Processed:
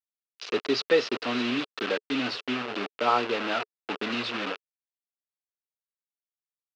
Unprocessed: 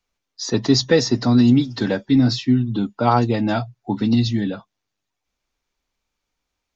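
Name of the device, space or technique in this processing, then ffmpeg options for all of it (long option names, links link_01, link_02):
hand-held game console: -af "acrusher=bits=3:mix=0:aa=0.000001,highpass=420,equalizer=frequency=430:width_type=q:width=4:gain=7,equalizer=frequency=840:width_type=q:width=4:gain=-3,equalizer=frequency=1300:width_type=q:width=4:gain=5,equalizer=frequency=2700:width_type=q:width=4:gain=7,lowpass=frequency=4400:width=0.5412,lowpass=frequency=4400:width=1.3066,volume=-6.5dB"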